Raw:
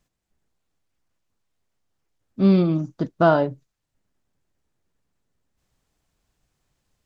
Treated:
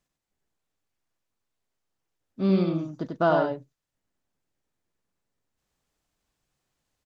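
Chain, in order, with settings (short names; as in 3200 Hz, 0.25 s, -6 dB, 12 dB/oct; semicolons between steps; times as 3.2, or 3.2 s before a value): low shelf 180 Hz -7 dB; on a send: echo 93 ms -4 dB; on the sum: gain -5 dB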